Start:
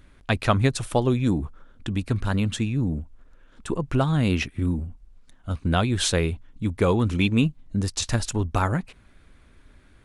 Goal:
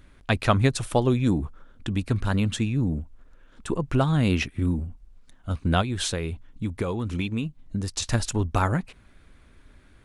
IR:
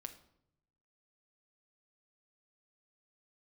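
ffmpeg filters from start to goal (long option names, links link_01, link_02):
-filter_complex "[0:a]asplit=3[link_01][link_02][link_03];[link_01]afade=type=out:start_time=5.81:duration=0.02[link_04];[link_02]acompressor=threshold=-24dB:ratio=10,afade=type=in:start_time=5.81:duration=0.02,afade=type=out:start_time=8.11:duration=0.02[link_05];[link_03]afade=type=in:start_time=8.11:duration=0.02[link_06];[link_04][link_05][link_06]amix=inputs=3:normalize=0"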